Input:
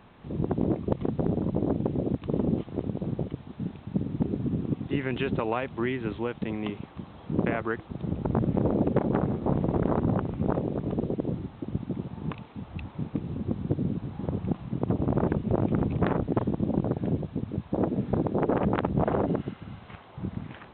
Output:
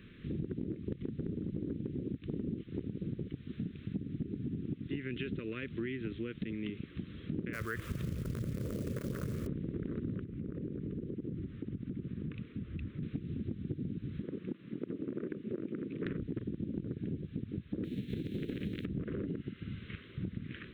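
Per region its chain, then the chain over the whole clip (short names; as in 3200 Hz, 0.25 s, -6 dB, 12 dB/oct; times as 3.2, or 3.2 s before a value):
7.53–9.47 EQ curve 120 Hz 0 dB, 190 Hz -6 dB, 330 Hz -9 dB, 520 Hz +3 dB, 790 Hz +13 dB, 1700 Hz +3 dB, 3800 Hz -4 dB + companded quantiser 6-bit + fast leveller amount 70%
10.24–13.03 LPF 1600 Hz 6 dB/oct + compressor, threshold -34 dBFS
14.22–16.06 HPF 330 Hz + high shelf 2300 Hz -9 dB
17.83–18.84 spectral whitening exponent 0.6 + bell 1200 Hz -15 dB 1.2 oct
whole clip: Chebyshev band-stop 360–1800 Hz, order 2; compressor 6:1, threshold -37 dBFS; gain +2 dB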